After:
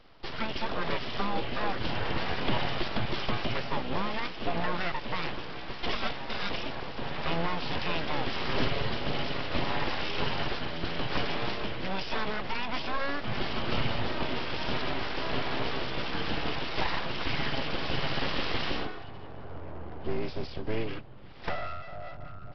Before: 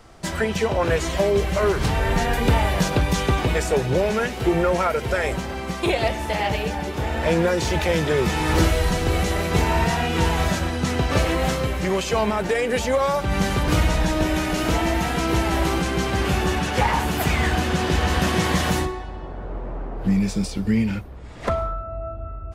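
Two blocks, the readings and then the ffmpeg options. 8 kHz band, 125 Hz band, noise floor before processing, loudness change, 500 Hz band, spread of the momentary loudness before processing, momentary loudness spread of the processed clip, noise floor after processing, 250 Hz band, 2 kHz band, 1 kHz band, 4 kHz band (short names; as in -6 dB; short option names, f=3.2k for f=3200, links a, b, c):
-27.0 dB, -14.5 dB, -33 dBFS, -11.0 dB, -13.0 dB, 7 LU, 8 LU, -40 dBFS, -13.0 dB, -8.0 dB, -9.0 dB, -4.5 dB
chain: -af "equalizer=f=3k:w=7.3:g=9,aresample=11025,aeval=exprs='abs(val(0))':c=same,aresample=44100,volume=-7.5dB"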